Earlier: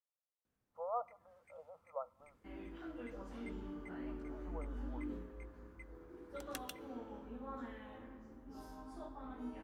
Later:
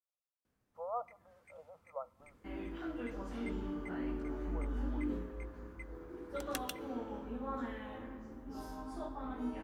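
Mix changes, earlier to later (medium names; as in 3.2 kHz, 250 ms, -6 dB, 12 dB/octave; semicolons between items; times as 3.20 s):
first sound +5.5 dB; second sound +6.5 dB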